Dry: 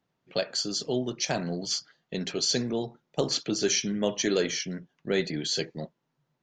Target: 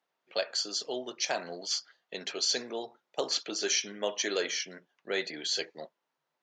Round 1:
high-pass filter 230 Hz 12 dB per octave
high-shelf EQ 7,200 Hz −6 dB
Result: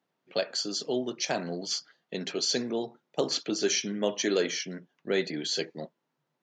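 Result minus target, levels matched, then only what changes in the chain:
250 Hz band +8.0 dB
change: high-pass filter 560 Hz 12 dB per octave

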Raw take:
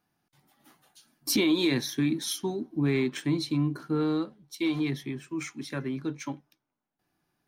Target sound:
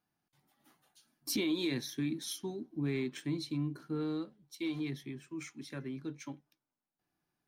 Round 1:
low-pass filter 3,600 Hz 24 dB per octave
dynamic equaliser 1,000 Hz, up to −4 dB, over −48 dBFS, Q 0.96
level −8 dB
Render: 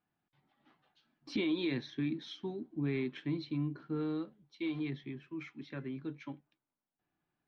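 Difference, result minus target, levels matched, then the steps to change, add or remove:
4,000 Hz band −3.5 dB
remove: low-pass filter 3,600 Hz 24 dB per octave

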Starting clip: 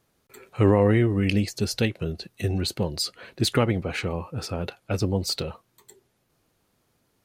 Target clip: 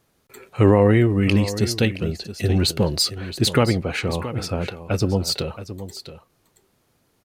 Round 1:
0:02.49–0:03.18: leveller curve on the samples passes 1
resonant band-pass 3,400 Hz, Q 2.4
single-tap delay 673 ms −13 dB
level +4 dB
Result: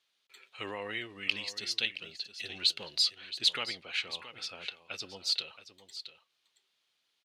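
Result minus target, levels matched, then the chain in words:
4,000 Hz band +8.5 dB
0:02.49–0:03.18: leveller curve on the samples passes 1
single-tap delay 673 ms −13 dB
level +4 dB

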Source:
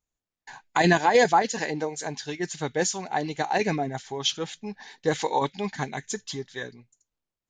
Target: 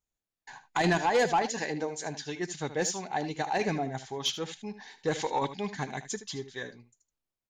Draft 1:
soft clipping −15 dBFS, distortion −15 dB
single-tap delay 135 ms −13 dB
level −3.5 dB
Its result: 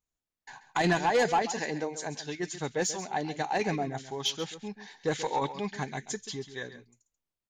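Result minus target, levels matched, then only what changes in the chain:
echo 59 ms late
change: single-tap delay 76 ms −13 dB

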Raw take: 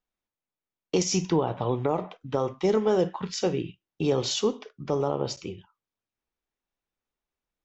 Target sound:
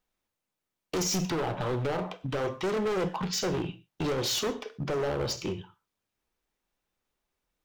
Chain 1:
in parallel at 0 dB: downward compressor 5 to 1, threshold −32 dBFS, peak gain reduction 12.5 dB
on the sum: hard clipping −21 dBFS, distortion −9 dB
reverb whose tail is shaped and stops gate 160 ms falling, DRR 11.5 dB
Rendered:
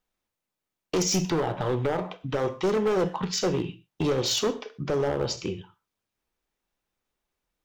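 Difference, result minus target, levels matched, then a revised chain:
hard clipping: distortion −4 dB
in parallel at 0 dB: downward compressor 5 to 1, threshold −32 dBFS, peak gain reduction 12.5 dB
on the sum: hard clipping −27 dBFS, distortion −5 dB
reverb whose tail is shaped and stops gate 160 ms falling, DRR 11.5 dB

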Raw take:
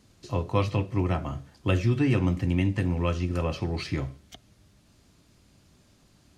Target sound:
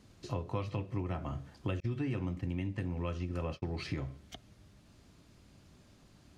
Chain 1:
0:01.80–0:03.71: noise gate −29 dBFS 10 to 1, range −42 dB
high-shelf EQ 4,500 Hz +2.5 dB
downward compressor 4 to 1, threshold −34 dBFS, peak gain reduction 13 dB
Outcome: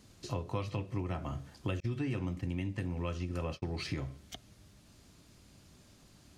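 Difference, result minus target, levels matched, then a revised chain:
8,000 Hz band +5.5 dB
0:01.80–0:03.71: noise gate −29 dBFS 10 to 1, range −42 dB
high-shelf EQ 4,500 Hz −6 dB
downward compressor 4 to 1, threshold −34 dBFS, peak gain reduction 13 dB

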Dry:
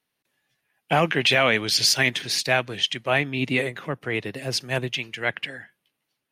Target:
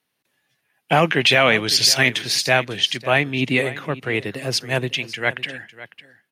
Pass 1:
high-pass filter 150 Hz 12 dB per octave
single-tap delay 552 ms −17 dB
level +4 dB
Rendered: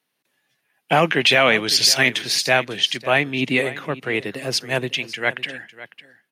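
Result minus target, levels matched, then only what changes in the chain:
125 Hz band −3.5 dB
change: high-pass filter 57 Hz 12 dB per octave

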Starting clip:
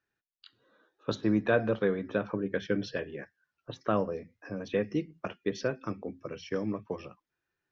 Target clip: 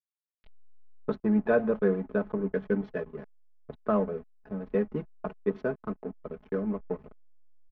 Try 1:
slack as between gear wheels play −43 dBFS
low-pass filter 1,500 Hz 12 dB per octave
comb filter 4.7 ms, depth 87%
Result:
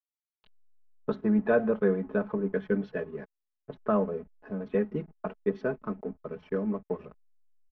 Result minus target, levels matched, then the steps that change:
slack as between gear wheels: distortion −7 dB
change: slack as between gear wheels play −35.5 dBFS

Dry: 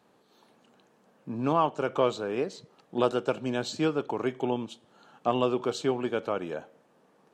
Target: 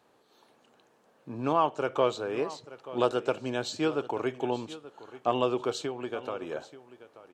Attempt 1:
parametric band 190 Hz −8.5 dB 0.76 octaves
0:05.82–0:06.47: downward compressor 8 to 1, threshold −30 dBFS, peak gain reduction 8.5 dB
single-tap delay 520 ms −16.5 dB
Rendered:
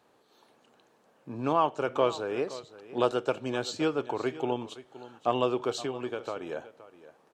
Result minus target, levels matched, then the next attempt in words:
echo 362 ms early
parametric band 190 Hz −8.5 dB 0.76 octaves
0:05.82–0:06.47: downward compressor 8 to 1, threshold −30 dBFS, peak gain reduction 8.5 dB
single-tap delay 882 ms −16.5 dB

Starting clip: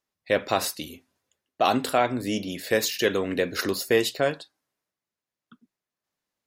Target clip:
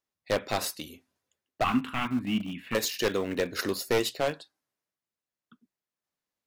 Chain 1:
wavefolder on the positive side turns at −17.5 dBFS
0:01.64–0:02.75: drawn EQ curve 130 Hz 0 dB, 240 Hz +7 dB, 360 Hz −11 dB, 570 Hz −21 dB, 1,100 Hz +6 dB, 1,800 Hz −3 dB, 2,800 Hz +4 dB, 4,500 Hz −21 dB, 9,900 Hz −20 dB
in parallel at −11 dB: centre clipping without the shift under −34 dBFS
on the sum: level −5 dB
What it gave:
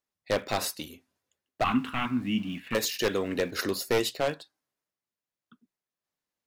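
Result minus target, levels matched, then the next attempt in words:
centre clipping without the shift: distortion −10 dB
wavefolder on the positive side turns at −17.5 dBFS
0:01.64–0:02.75: drawn EQ curve 130 Hz 0 dB, 240 Hz +7 dB, 360 Hz −11 dB, 570 Hz −21 dB, 1,100 Hz +6 dB, 1,800 Hz −3 dB, 2,800 Hz +4 dB, 4,500 Hz −21 dB, 9,900 Hz −20 dB
in parallel at −11 dB: centre clipping without the shift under −25.5 dBFS
on the sum: level −5 dB

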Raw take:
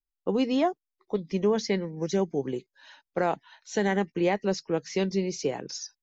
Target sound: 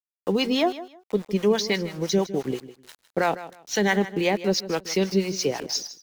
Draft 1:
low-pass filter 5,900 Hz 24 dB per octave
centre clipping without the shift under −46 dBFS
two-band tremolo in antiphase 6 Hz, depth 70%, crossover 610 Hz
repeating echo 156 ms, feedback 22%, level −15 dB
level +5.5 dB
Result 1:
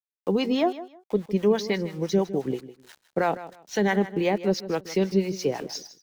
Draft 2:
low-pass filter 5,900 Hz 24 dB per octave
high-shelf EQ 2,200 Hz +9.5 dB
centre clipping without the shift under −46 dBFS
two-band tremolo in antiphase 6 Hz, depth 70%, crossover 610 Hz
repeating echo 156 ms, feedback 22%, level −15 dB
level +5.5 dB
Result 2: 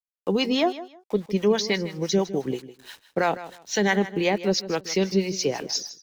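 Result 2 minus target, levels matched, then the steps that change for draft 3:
centre clipping without the shift: distortion −8 dB
change: centre clipping without the shift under −39.5 dBFS

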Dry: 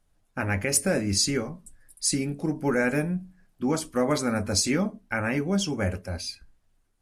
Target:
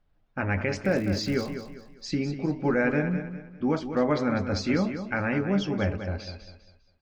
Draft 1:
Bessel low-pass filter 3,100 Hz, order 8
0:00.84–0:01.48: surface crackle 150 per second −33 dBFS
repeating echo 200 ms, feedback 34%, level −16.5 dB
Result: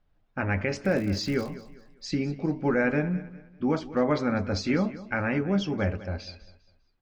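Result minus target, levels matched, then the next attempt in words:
echo-to-direct −7 dB
Bessel low-pass filter 3,100 Hz, order 8
0:00.84–0:01.48: surface crackle 150 per second −33 dBFS
repeating echo 200 ms, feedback 34%, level −9.5 dB

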